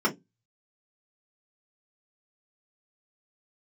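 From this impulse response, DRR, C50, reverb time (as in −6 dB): −4.0 dB, 18.5 dB, 0.15 s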